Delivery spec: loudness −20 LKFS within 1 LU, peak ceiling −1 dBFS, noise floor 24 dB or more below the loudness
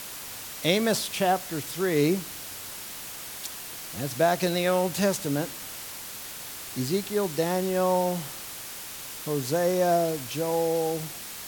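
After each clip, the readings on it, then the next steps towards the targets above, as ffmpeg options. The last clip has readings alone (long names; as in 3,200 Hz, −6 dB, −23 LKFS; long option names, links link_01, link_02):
background noise floor −39 dBFS; target noise floor −52 dBFS; integrated loudness −27.5 LKFS; sample peak −7.0 dBFS; target loudness −20.0 LKFS
→ -af "afftdn=noise_reduction=13:noise_floor=-39"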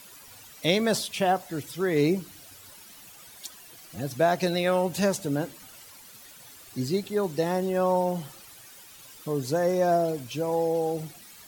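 background noise floor −49 dBFS; target noise floor −51 dBFS
→ -af "afftdn=noise_reduction=6:noise_floor=-49"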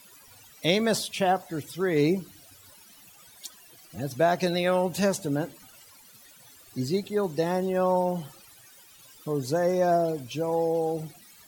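background noise floor −53 dBFS; integrated loudness −27.0 LKFS; sample peak −7.0 dBFS; target loudness −20.0 LKFS
→ -af "volume=7dB,alimiter=limit=-1dB:level=0:latency=1"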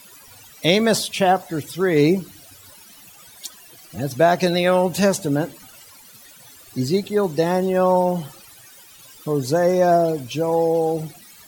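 integrated loudness −20.0 LKFS; sample peak −1.0 dBFS; background noise floor −46 dBFS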